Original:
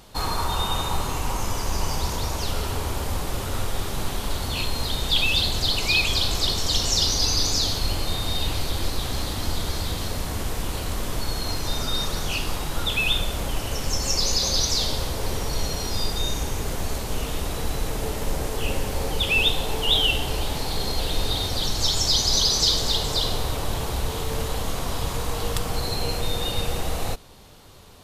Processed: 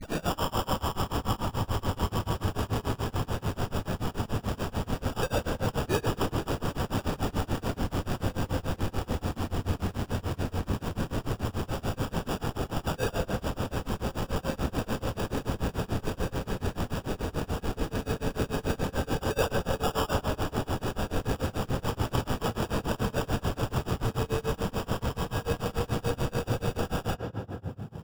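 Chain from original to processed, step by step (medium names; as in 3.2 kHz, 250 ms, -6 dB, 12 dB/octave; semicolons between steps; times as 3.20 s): tape start-up on the opening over 0.37 s; low-pass 2.3 kHz 12 dB/octave; bass shelf 66 Hz -9.5 dB; sample-and-hold 21×; on a send at -2.5 dB: reverberation RT60 3.5 s, pre-delay 3 ms; on the sum: tremolo 6.9 Hz, depth 97%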